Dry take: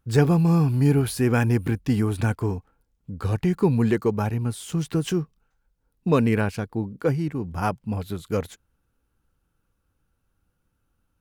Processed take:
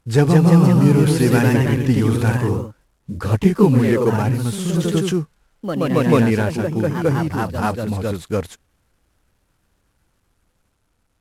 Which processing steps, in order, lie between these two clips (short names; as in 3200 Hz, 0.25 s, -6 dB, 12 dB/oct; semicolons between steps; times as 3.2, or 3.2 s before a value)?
CVSD 64 kbps; echoes that change speed 0.179 s, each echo +1 st, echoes 3; gain +4 dB